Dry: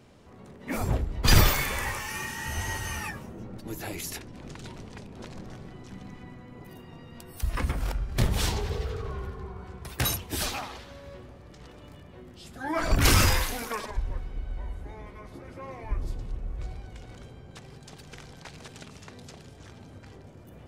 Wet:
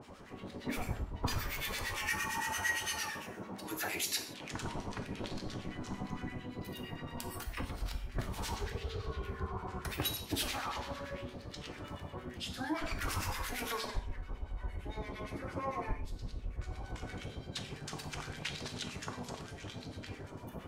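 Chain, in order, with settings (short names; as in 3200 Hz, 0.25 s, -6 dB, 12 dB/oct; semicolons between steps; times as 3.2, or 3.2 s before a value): 2.38–4.54 HPF 450 Hz 6 dB/oct; compressor 10:1, threshold -37 dBFS, peak gain reduction 23.5 dB; harmonic tremolo 8.8 Hz, depth 100%, crossover 1300 Hz; non-linear reverb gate 0.2 s falling, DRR 4.5 dB; LFO bell 0.83 Hz 930–4400 Hz +9 dB; gain +5.5 dB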